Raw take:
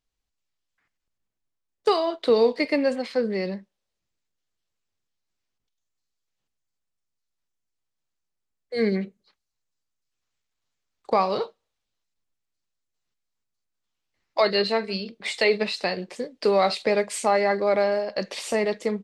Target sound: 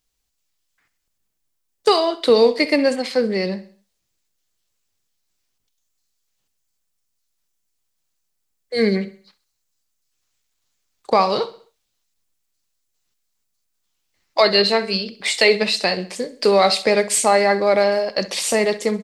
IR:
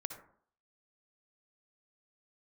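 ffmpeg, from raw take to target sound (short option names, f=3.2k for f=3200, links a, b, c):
-filter_complex "[0:a]highshelf=f=4.7k:g=11,asplit=2[a][b];[b]aecho=0:1:65|130|195|260:0.141|0.0622|0.0273|0.012[c];[a][c]amix=inputs=2:normalize=0,volume=5dB"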